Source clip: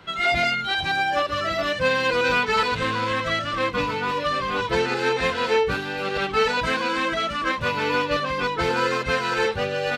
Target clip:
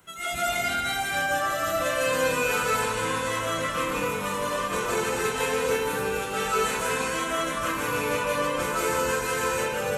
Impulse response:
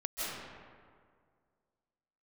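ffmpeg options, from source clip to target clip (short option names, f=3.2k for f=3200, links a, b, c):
-filter_complex "[0:a]aexciter=amount=8.6:drive=9.1:freq=6.8k[a];[1:a]atrim=start_sample=2205[b];[a][b]afir=irnorm=-1:irlink=0,volume=-8.5dB"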